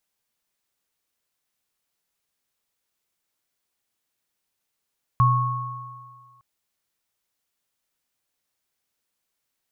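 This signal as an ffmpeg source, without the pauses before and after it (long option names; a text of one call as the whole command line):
ffmpeg -f lavfi -i "aevalsrc='0.178*pow(10,-3*t/1.52)*sin(2*PI*124*t)+0.158*pow(10,-3*t/1.91)*sin(2*PI*1100*t)':duration=1.21:sample_rate=44100" out.wav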